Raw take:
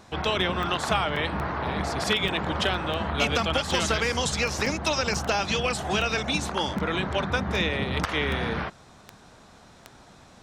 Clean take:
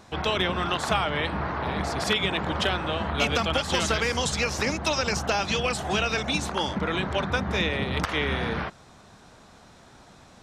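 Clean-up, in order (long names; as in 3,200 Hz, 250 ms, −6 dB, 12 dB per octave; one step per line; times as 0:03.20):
click removal
repair the gap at 0:01.16/0:02.28/0:02.74/0:04.66/0:05.14, 3.9 ms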